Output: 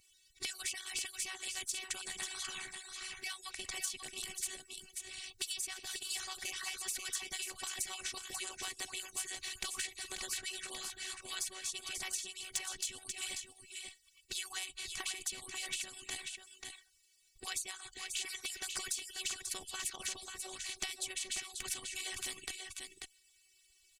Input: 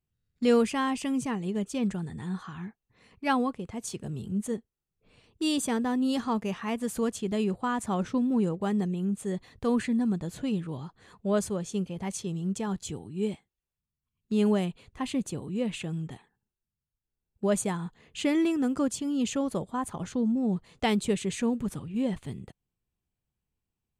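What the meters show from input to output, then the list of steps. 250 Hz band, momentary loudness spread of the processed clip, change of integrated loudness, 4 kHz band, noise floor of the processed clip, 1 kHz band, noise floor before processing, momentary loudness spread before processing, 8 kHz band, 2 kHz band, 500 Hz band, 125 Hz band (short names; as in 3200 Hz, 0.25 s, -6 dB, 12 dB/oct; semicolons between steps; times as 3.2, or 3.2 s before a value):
-34.0 dB, 7 LU, -10.0 dB, +2.0 dB, -69 dBFS, -16.0 dB, under -85 dBFS, 11 LU, +3.5 dB, -2.5 dB, -24.5 dB, -29.0 dB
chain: median-filter separation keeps percussive; band shelf 4300 Hz +15 dB 2.7 oct; robotiser 378 Hz; compressor 12:1, threshold -37 dBFS, peak gain reduction 22 dB; passive tone stack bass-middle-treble 5-5-5; echo 0.539 s -10.5 dB; spectral compressor 2:1; gain +10.5 dB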